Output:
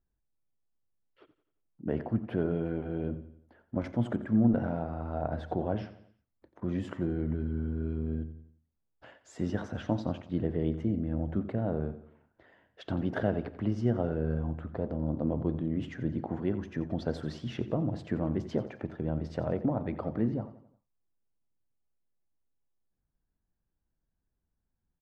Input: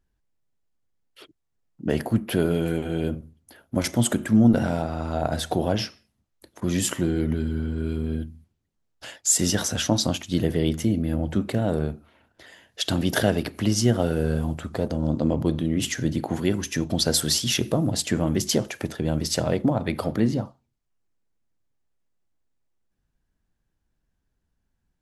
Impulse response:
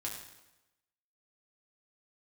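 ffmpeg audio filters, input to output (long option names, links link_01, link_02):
-filter_complex "[0:a]lowpass=1400,asplit=2[link_01][link_02];[link_02]aecho=0:1:88|176|264|352:0.178|0.0818|0.0376|0.0173[link_03];[link_01][link_03]amix=inputs=2:normalize=0,volume=-7.5dB"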